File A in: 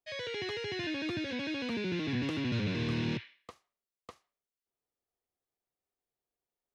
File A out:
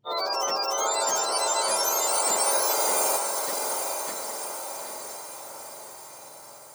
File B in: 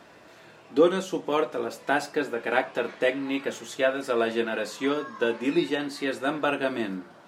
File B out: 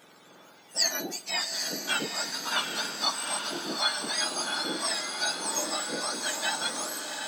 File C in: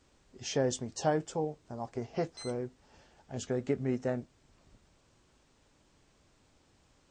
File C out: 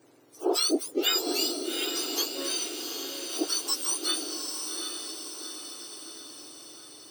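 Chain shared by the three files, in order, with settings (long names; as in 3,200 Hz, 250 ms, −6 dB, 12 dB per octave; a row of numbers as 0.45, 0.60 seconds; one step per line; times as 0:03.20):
frequency axis turned over on the octave scale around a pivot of 1,500 Hz
feedback delay with all-pass diffusion 794 ms, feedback 57%, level −5 dB
normalise the peak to −12 dBFS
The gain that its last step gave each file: +12.5, −0.5, +8.5 decibels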